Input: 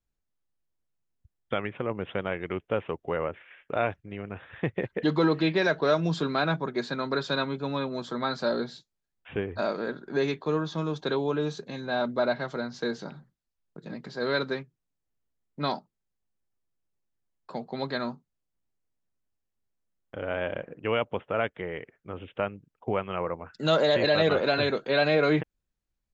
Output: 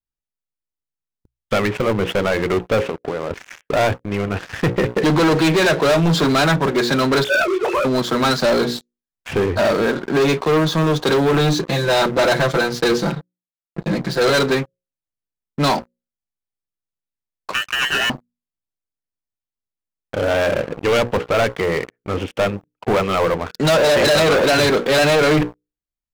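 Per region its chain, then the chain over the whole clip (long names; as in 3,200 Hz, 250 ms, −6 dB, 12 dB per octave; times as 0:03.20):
0:02.89–0:03.31: high-pass filter 210 Hz + spectral tilt −3 dB per octave + downward compressor 16 to 1, threshold −36 dBFS
0:07.24–0:07.85: three sine waves on the formant tracks + micro pitch shift up and down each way 39 cents
0:11.33–0:14.30: downward expander −42 dBFS + comb filter 5.9 ms, depth 97%
0:17.53–0:18.10: voice inversion scrambler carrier 2,600 Hz + ring modulation 590 Hz
whole clip: mains-hum notches 60/120/180/240/300/360/420/480/540 Hz; leveller curve on the samples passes 5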